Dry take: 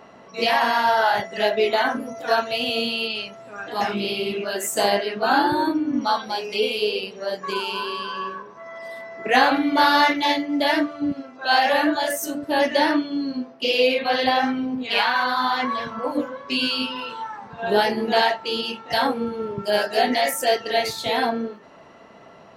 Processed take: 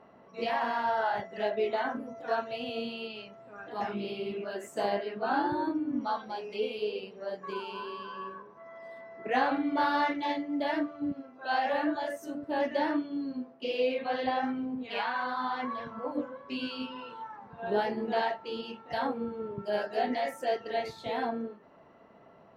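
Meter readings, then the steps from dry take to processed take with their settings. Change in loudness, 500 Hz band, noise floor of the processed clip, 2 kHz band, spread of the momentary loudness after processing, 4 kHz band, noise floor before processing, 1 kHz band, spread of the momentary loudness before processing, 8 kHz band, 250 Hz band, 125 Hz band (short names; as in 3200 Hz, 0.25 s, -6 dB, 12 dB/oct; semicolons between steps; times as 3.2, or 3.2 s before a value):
-11.0 dB, -9.0 dB, -56 dBFS, -13.0 dB, 11 LU, -17.5 dB, -46 dBFS, -10.0 dB, 11 LU, under -20 dB, -8.5 dB, -8.5 dB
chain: LPF 1300 Hz 6 dB/oct; gain -8.5 dB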